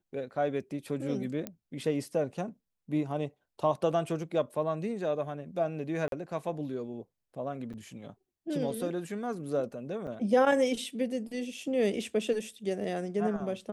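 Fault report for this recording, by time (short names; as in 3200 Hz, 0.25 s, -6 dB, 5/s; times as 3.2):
1.47 pop -20 dBFS
6.08–6.12 gap 42 ms
7.73–7.74 gap 6.9 ms
10.07–10.08 gap 5.8 ms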